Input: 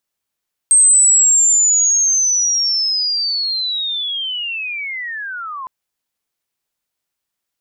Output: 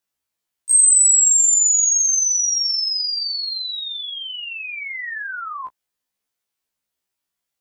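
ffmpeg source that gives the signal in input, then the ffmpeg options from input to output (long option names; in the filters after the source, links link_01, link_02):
-f lavfi -i "aevalsrc='pow(10,(-6.5-18.5*t/4.96)/20)*sin(2*PI*(8400*t-7400*t*t/(2*4.96)))':duration=4.96:sample_rate=44100"
-filter_complex "[0:a]acrossover=split=2200|4300[link_01][link_02][link_03];[link_02]alimiter=level_in=10.5dB:limit=-24dB:level=0:latency=1:release=20,volume=-10.5dB[link_04];[link_01][link_04][link_03]amix=inputs=3:normalize=0,afftfilt=real='re*1.73*eq(mod(b,3),0)':imag='im*1.73*eq(mod(b,3),0)':win_size=2048:overlap=0.75"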